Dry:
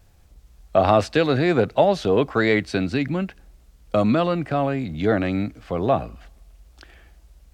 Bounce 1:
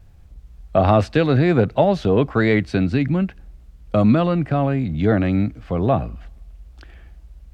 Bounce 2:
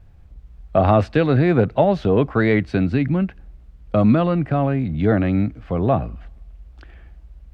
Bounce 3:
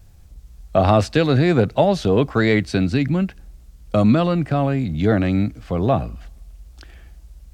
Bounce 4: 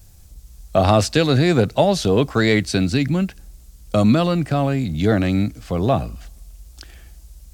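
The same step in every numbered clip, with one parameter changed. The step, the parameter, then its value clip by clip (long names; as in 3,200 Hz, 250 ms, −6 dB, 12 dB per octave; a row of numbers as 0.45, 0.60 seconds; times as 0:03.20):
bass and treble, treble: −6, −15, +4, +15 decibels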